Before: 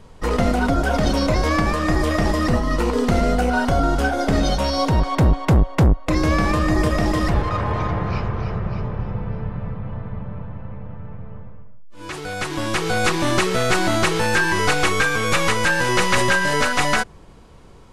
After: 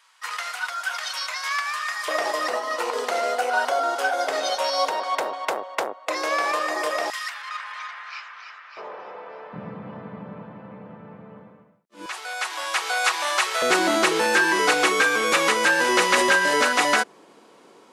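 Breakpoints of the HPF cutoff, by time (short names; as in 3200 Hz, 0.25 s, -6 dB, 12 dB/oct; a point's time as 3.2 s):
HPF 24 dB/oct
1200 Hz
from 2.08 s 520 Hz
from 7.1 s 1400 Hz
from 8.77 s 470 Hz
from 9.53 s 190 Hz
from 12.06 s 690 Hz
from 13.62 s 260 Hz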